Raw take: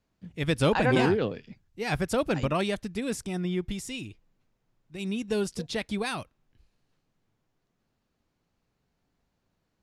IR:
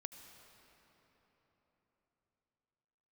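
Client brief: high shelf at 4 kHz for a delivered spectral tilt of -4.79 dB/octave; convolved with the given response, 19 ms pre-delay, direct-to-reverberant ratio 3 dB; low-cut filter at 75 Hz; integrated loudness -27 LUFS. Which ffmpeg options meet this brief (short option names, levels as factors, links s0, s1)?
-filter_complex "[0:a]highpass=75,highshelf=f=4000:g=5,asplit=2[s0][s1];[1:a]atrim=start_sample=2205,adelay=19[s2];[s1][s2]afir=irnorm=-1:irlink=0,volume=1.12[s3];[s0][s3]amix=inputs=2:normalize=0"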